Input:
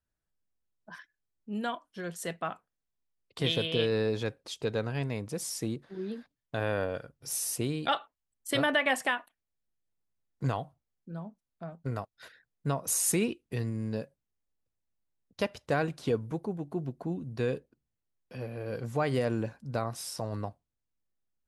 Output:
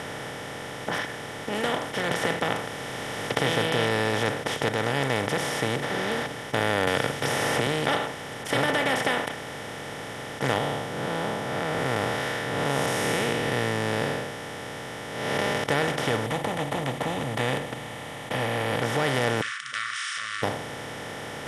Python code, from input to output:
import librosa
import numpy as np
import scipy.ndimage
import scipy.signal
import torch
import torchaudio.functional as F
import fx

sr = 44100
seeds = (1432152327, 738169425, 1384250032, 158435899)

y = fx.band_squash(x, sr, depth_pct=100, at=(2.11, 3.39))
y = fx.band_squash(y, sr, depth_pct=100, at=(6.87, 7.67))
y = fx.spec_blur(y, sr, span_ms=203.0, at=(10.58, 15.64))
y = fx.fixed_phaser(y, sr, hz=1500.0, stages=6, at=(16.26, 18.82))
y = fx.brickwall_bandpass(y, sr, low_hz=1100.0, high_hz=9900.0, at=(19.41, 20.43))
y = fx.edit(y, sr, fx.fade_in_from(start_s=4.69, length_s=0.41, floor_db=-12.0), tone=tone)
y = fx.bin_compress(y, sr, power=0.2)
y = fx.high_shelf(y, sr, hz=5800.0, db=-8.5)
y = F.gain(torch.from_numpy(y), -4.0).numpy()